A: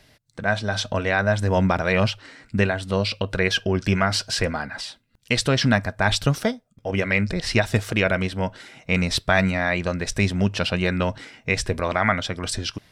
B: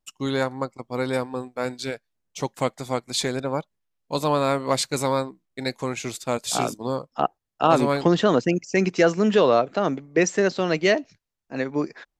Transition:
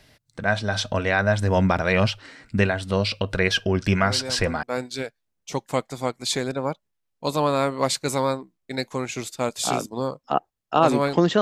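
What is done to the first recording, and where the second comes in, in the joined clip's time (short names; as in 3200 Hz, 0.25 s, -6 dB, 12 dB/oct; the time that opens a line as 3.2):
A
3.93 add B from 0.81 s 0.70 s -8.5 dB
4.63 switch to B from 1.51 s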